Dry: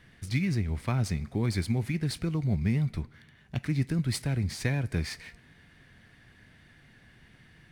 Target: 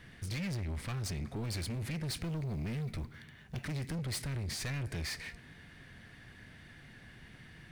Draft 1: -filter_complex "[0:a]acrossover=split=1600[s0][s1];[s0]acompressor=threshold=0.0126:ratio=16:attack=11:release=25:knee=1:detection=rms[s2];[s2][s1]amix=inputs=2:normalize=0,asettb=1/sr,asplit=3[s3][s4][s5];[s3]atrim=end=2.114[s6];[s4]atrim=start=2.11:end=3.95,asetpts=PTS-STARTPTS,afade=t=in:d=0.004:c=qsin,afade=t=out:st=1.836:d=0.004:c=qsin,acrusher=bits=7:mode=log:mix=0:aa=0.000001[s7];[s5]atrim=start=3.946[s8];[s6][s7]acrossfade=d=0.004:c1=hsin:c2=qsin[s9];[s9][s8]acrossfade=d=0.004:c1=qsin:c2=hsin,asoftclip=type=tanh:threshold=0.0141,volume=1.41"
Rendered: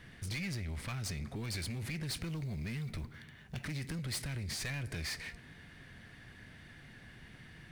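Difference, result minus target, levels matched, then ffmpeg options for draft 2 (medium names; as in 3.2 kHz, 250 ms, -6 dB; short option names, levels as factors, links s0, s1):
compression: peak gain reduction +6 dB
-filter_complex "[0:a]acrossover=split=1600[s0][s1];[s0]acompressor=threshold=0.0266:ratio=16:attack=11:release=25:knee=1:detection=rms[s2];[s2][s1]amix=inputs=2:normalize=0,asettb=1/sr,asplit=3[s3][s4][s5];[s3]atrim=end=2.114[s6];[s4]atrim=start=2.11:end=3.95,asetpts=PTS-STARTPTS,afade=t=in:d=0.004:c=qsin,afade=t=out:st=1.836:d=0.004:c=qsin,acrusher=bits=7:mode=log:mix=0:aa=0.000001[s7];[s5]atrim=start=3.946[s8];[s6][s7]acrossfade=d=0.004:c1=hsin:c2=qsin[s9];[s9][s8]acrossfade=d=0.004:c1=qsin:c2=hsin,asoftclip=type=tanh:threshold=0.0141,volume=1.41"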